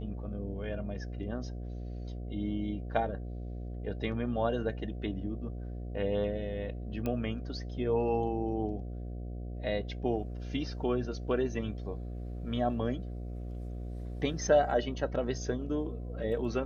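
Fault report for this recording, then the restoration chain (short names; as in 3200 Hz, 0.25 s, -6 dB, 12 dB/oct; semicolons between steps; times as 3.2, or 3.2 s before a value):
buzz 60 Hz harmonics 12 -39 dBFS
7.06 pop -21 dBFS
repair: de-click; de-hum 60 Hz, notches 12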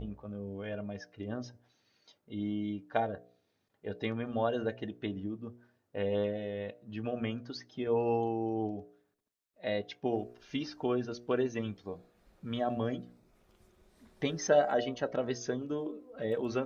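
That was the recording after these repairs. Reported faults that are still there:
none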